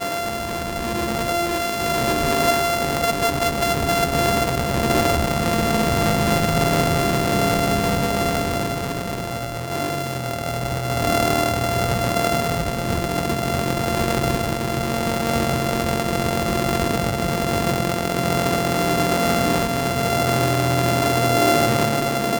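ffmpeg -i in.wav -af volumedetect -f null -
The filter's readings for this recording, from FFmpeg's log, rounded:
mean_volume: -20.6 dB
max_volume: -7.8 dB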